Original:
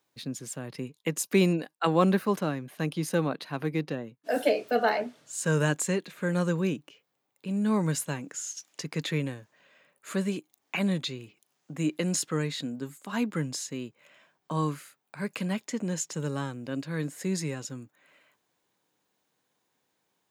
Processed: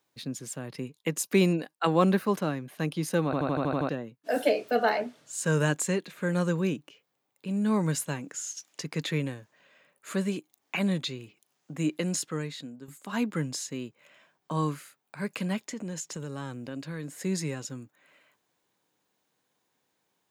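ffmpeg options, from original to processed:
-filter_complex "[0:a]asettb=1/sr,asplit=3[a][b][c];[a]atrim=end=15.604[d];[b]atrim=start=15.6:end=17.15,asetpts=PTS-STARTPTS,afade=t=in:d=0.004:c=qsin,afade=t=out:st=1.546:d=0.004:c=qsin,acompressor=threshold=-32dB:ratio=6:attack=3.2:release=140:knee=1:detection=peak[e];[c]atrim=start=17.146[f];[d][e]acrossfade=d=0.004:c1=hsin:c2=qsin[g];[g][f]acrossfade=d=0.004:c1=qsin:c2=hsin,asplit=10[h][i][j][k][l][m][n][o][p][q];[h]atrim=end=3.332[r];[i]atrim=start=3.248:end=3.332[s];[j]atrim=start=3.248:end=3.332[t];[k]atrim=start=3.248:end=3.332[u];[l]atrim=start=3.248:end=3.332[v];[m]atrim=start=3.248:end=3.332[w];[n]atrim=start=3.248:end=3.332[x];[o]atrim=start=3.248:end=3.332[y];[p]atrim=start=3.888:end=12.88,asetpts=PTS-STARTPTS,afade=t=out:st=7.992:d=1:silence=0.281838[z];[q]atrim=start=12.88,asetpts=PTS-STARTPTS,afade=t=in:d=0.004:c=hsin:silence=0.281838[aa];[r][s]acrossfade=d=0.004:c1=hsin:c2=hsin[ab];[ab][t]acrossfade=d=0.004:c1=hsin:c2=hsin[ac];[ac][u]acrossfade=d=0.004:c1=hsin:c2=hsin[ad];[ad][v]acrossfade=d=0.004:c1=hsin:c2=hsin[ae];[ae][w]acrossfade=d=0.004:c1=hsin:c2=hsin[af];[af][x]acrossfade=d=0.004:c1=hsin:c2=hsin[ag];[ag][y]acrossfade=d=0.004:c1=hsin:c2=hsin[ah];[z][aa]concat=n=2:v=0:a=1[ai];[ah][ai]acrossfade=d=0.004:c1=hsin:c2=hsin"

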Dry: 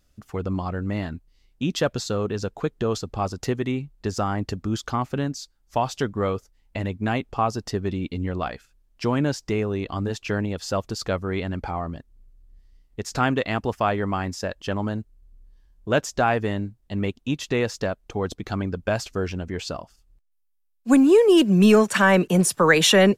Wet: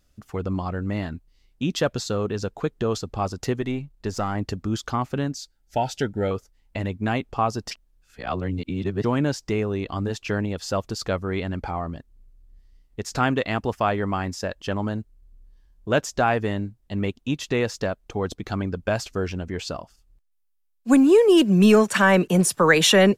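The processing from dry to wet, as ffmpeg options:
-filter_complex "[0:a]asettb=1/sr,asplit=3[a][b][c];[a]atrim=end=3.614[d];[b]atrim=start=3.61:end=4.35,asetpts=PTS-STARTPTS,afade=t=in:d=0.004:c=qsin,afade=t=out:st=0.736:d=0.004:c=qsin,aeval=exprs='if(lt(val(0),0),0.708*val(0),val(0))':c=same[e];[c]atrim=start=4.346[f];[d][e]acrossfade=d=0.004:c1=hsin:c2=qsin[g];[g][f]acrossfade=d=0.004:c1=qsin:c2=hsin,asettb=1/sr,asplit=3[h][i][j];[h]atrim=end=5.364[k];[i]atrim=start=5.36:end=6.31,asetpts=PTS-STARTPTS,afade=t=in:d=0.004:c=qsin,afade=t=out:st=0.946:d=0.004:c=qsin,asuperstop=centerf=1100:order=20:qfactor=3.2[l];[j]atrim=start=6.306[m];[k][l]acrossfade=d=0.004:c1=hsin:c2=qsin[n];[n][m]acrossfade=d=0.004:c1=qsin:c2=hsin,asplit=3[o][p][q];[o]atrim=end=7.712[r];[p]atrim=start=7.708:end=9.042,asetpts=PTS-STARTPTS,areverse[s];[q]atrim=start=9.038[t];[r][s]acrossfade=d=0.004:c1=hsin:c2=hsin[u];[u][t]acrossfade=d=0.004:c1=hsin:c2=hsin"

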